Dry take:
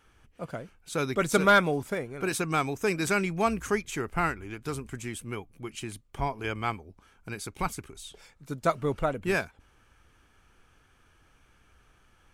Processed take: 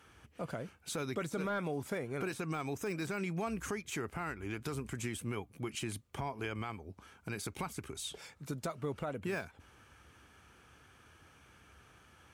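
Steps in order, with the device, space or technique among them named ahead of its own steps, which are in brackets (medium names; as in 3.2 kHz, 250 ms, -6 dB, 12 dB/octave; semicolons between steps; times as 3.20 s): podcast mastering chain (high-pass 63 Hz 24 dB/octave; de-esser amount 85%; compression 4:1, threshold -36 dBFS, peak gain reduction 14 dB; peak limiter -31 dBFS, peak gain reduction 8 dB; trim +3.5 dB; MP3 112 kbps 44.1 kHz)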